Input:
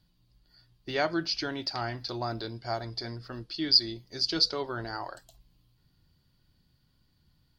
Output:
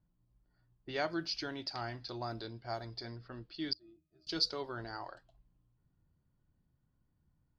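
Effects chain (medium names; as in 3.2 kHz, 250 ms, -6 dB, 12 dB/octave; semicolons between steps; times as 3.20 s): level-controlled noise filter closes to 1.2 kHz, open at -28 dBFS; 3.73–4.27 s: pitch-class resonator D#, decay 0.24 s; trim -7 dB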